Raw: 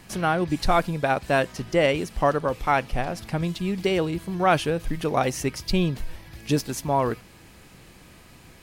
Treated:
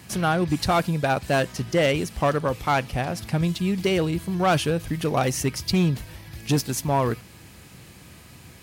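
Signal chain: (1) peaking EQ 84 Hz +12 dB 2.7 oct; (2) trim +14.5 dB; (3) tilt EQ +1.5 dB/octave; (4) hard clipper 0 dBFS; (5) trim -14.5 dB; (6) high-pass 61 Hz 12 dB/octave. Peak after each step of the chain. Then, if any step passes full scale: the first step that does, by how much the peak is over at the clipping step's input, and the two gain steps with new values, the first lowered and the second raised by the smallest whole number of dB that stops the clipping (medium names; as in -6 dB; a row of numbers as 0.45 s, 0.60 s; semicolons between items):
-5.0 dBFS, +9.5 dBFS, +8.0 dBFS, 0.0 dBFS, -14.5 dBFS, -11.5 dBFS; step 2, 8.0 dB; step 2 +6.5 dB, step 5 -6.5 dB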